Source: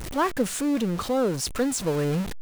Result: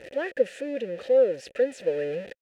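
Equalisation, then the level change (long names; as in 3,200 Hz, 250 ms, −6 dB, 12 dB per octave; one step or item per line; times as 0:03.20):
formant filter e
+8.0 dB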